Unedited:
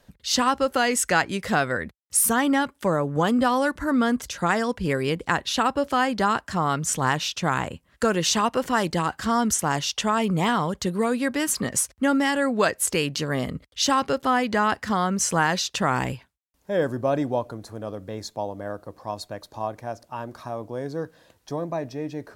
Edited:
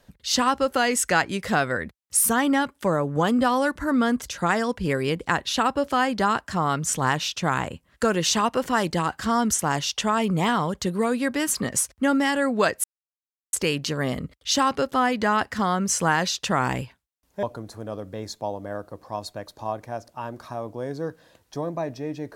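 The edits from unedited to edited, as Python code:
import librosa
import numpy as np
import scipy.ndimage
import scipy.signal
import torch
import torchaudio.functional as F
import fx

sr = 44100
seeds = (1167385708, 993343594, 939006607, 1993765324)

y = fx.edit(x, sr, fx.insert_silence(at_s=12.84, length_s=0.69),
    fx.cut(start_s=16.74, length_s=0.64), tone=tone)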